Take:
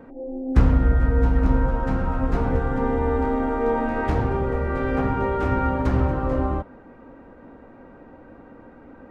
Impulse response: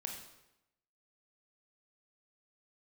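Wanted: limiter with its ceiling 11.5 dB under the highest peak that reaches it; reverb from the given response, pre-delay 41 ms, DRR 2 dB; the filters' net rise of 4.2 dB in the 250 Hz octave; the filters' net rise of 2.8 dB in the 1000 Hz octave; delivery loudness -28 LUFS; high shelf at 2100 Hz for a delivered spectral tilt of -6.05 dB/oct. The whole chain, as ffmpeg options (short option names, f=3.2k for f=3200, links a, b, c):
-filter_complex "[0:a]equalizer=f=250:t=o:g=4.5,equalizer=f=1k:t=o:g=5,highshelf=f=2.1k:g=-8.5,alimiter=limit=-14.5dB:level=0:latency=1,asplit=2[a][b];[1:a]atrim=start_sample=2205,adelay=41[c];[b][c]afir=irnorm=-1:irlink=0,volume=-0.5dB[d];[a][d]amix=inputs=2:normalize=0,volume=-6.5dB"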